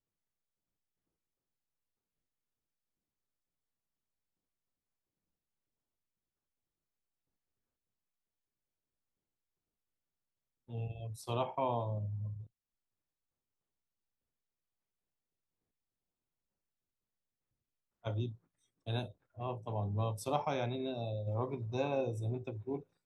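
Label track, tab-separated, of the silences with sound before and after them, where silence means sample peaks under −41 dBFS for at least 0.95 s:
12.410000	18.050000	silence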